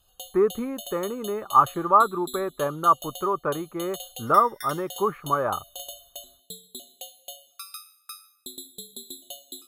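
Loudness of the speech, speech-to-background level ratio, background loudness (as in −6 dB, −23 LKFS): −24.5 LKFS, 16.0 dB, −40.5 LKFS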